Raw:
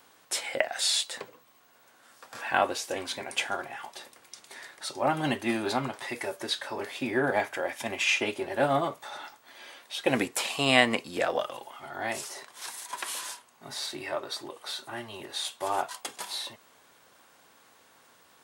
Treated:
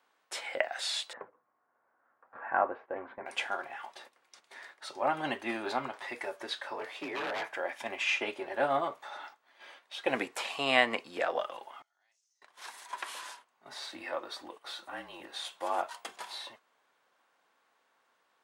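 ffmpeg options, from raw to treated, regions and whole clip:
ffmpeg -i in.wav -filter_complex "[0:a]asettb=1/sr,asplit=3[link_01][link_02][link_03];[link_01]atrim=end=1.134[link_04];[link_02]atrim=start=1.13:end=3.26,asetpts=PTS-STARTPTS,afade=type=in:duration=0.004:curve=qsin,afade=type=out:start_time=2.126:duration=0.004:curve=qsin,lowpass=frequency=1600:width=0.5412,lowpass=frequency=1600:width=1.3066,lowshelf=frequency=86:gain=7[link_05];[link_03]atrim=start=3.256[link_06];[link_04][link_05]acrossfade=duration=0.004:curve1=hsin:curve2=qsin[link_07];[link_07][link_06]acrossfade=duration=0.004:curve1=qsin:curve2=hsin,asettb=1/sr,asplit=3[link_08][link_09][link_10];[link_08]atrim=end=6.744[link_11];[link_09]atrim=start=6.74:end=7.53,asetpts=PTS-STARTPTS,afade=type=in:duration=0.004:curve=qsin,afade=type=out:start_time=0.786:duration=0.004:curve=qsin,afreqshift=36,aeval=exprs='0.0501*(abs(mod(val(0)/0.0501+3,4)-2)-1)':channel_layout=same[link_12];[link_10]atrim=start=7.526[link_13];[link_11][link_12]acrossfade=duration=0.004:curve1=hsin:curve2=qsin[link_14];[link_14][link_13]acrossfade=duration=0.004:curve1=qsin:curve2=hsin,asettb=1/sr,asplit=3[link_15][link_16][link_17];[link_15]atrim=end=11.824[link_18];[link_16]atrim=start=11.82:end=12.42,asetpts=PTS-STARTPTS,afade=type=in:duration=0.004:curve=qsin,afade=type=out:start_time=0.596:duration=0.004:curve=qsin,bandpass=frequency=6200:width_type=q:width=5.2,acompressor=threshold=-59dB:ratio=3:attack=3.2:release=140:knee=1:detection=peak[link_19];[link_17]atrim=start=12.416[link_20];[link_18][link_19]acrossfade=duration=0.004:curve1=hsin:curve2=qsin[link_21];[link_21][link_20]acrossfade=duration=0.004:curve1=qsin:curve2=hsin,asettb=1/sr,asplit=3[link_22][link_23][link_24];[link_22]atrim=end=13.924[link_25];[link_23]atrim=start=13.92:end=16.17,asetpts=PTS-STARTPTS,afade=type=in:duration=0.004:curve=qsin,afade=type=out:start_time=2.246:duration=0.004:curve=qsin,highshelf=frequency=10000:gain=4,afreqshift=-41[link_26];[link_24]atrim=start=16.166[link_27];[link_25][link_26]acrossfade=duration=0.004:curve1=hsin:curve2=qsin[link_28];[link_28][link_27]acrossfade=duration=0.004:curve1=qsin:curve2=hsin,highpass=frequency=950:poles=1,agate=range=-9dB:threshold=-49dB:ratio=16:detection=peak,lowpass=frequency=1400:poles=1,volume=2.5dB" out.wav

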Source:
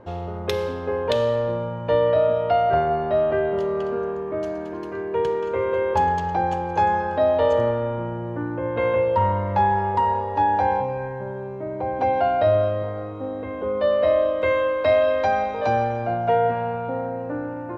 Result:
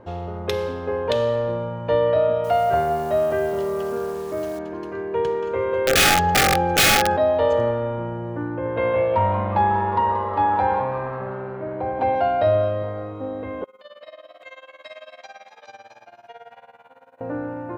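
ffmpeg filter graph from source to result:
ffmpeg -i in.wav -filter_complex "[0:a]asettb=1/sr,asplit=3[link_01][link_02][link_03];[link_01]atrim=end=2.444[link_04];[link_02]atrim=start=2.44:end=4.59,asetpts=PTS-STARTPTS,afade=type=in:duration=0.004:curve=qsin,afade=type=out:start_time=2.146:duration=0.004:curve=qsin,acrusher=bits=8:dc=4:mix=0:aa=0.000001,bandreject=frequency=50:width_type=h:width=6,bandreject=frequency=100:width_type=h:width=6,bandreject=frequency=150:width_type=h:width=6,bandreject=frequency=200:width_type=h:width=6,bandreject=frequency=250:width_type=h:width=6,bandreject=frequency=300:width_type=h:width=6,bandreject=frequency=350:width_type=h:width=6,bandreject=frequency=400:width_type=h:width=6,bandreject=frequency=450:width_type=h:width=6[link_05];[link_03]atrim=start=4.586[link_06];[link_04][link_05]acrossfade=duration=0.004:curve1=hsin:curve2=qsin[link_07];[link_07][link_06]acrossfade=duration=0.004:curve1=qsin:curve2=hsin,asettb=1/sr,asplit=3[link_08][link_09][link_10];[link_08]atrim=end=5.874[link_11];[link_09]atrim=start=5.87:end=7.17,asetpts=PTS-STARTPTS,afade=type=in:duration=0.004:curve=qsin,afade=type=out:start_time=1.296:duration=0.004:curve=qsin,aeval=exprs='(mod(7.08*val(0)+1,2)-1)/7.08':channel_layout=same,acontrast=66,asuperstop=centerf=1000:order=20:qfactor=3.6[link_12];[link_10]atrim=start=7.166[link_13];[link_11][link_12]acrossfade=duration=0.004:curve1=hsin:curve2=qsin[link_14];[link_14][link_13]acrossfade=duration=0.004:curve1=qsin:curve2=hsin,asettb=1/sr,asplit=3[link_15][link_16][link_17];[link_15]atrim=end=8.474[link_18];[link_16]atrim=start=8.47:end=12.15,asetpts=PTS-STARTPTS,afade=type=in:duration=0.004:curve=qsin,afade=type=out:start_time=3.676:duration=0.004:curve=qsin,lowpass=frequency=4500:width=0.5412,lowpass=frequency=4500:width=1.3066,asplit=8[link_19][link_20][link_21][link_22][link_23][link_24][link_25][link_26];[link_20]adelay=181,afreqshift=120,volume=-12.5dB[link_27];[link_21]adelay=362,afreqshift=240,volume=-17.1dB[link_28];[link_22]adelay=543,afreqshift=360,volume=-21.7dB[link_29];[link_23]adelay=724,afreqshift=480,volume=-26.2dB[link_30];[link_24]adelay=905,afreqshift=600,volume=-30.8dB[link_31];[link_25]adelay=1086,afreqshift=720,volume=-35.4dB[link_32];[link_26]adelay=1267,afreqshift=840,volume=-40dB[link_33];[link_19][link_27][link_28][link_29][link_30][link_31][link_32][link_33]amix=inputs=8:normalize=0,atrim=end_sample=162288[link_34];[link_17]atrim=start=12.146[link_35];[link_18][link_34]acrossfade=duration=0.004:curve1=hsin:curve2=qsin[link_36];[link_36][link_35]acrossfade=duration=0.004:curve1=qsin:curve2=hsin,asettb=1/sr,asplit=3[link_37][link_38][link_39];[link_37]atrim=end=13.644[link_40];[link_38]atrim=start=13.64:end=17.21,asetpts=PTS-STARTPTS,afade=type=in:duration=0.004:curve=qsin,afade=type=out:start_time=3.566:duration=0.004:curve=qsin,aderivative,asplit=5[link_41][link_42][link_43][link_44][link_45];[link_42]adelay=247,afreqshift=77,volume=-9.5dB[link_46];[link_43]adelay=494,afreqshift=154,volume=-19.4dB[link_47];[link_44]adelay=741,afreqshift=231,volume=-29.3dB[link_48];[link_45]adelay=988,afreqshift=308,volume=-39.2dB[link_49];[link_41][link_46][link_47][link_48][link_49]amix=inputs=5:normalize=0,atrim=end_sample=157437,tremolo=f=18:d=0.88[link_50];[link_39]atrim=start=17.206[link_51];[link_40][link_50]acrossfade=duration=0.004:curve1=hsin:curve2=qsin[link_52];[link_52][link_51]acrossfade=duration=0.004:curve1=qsin:curve2=hsin" out.wav

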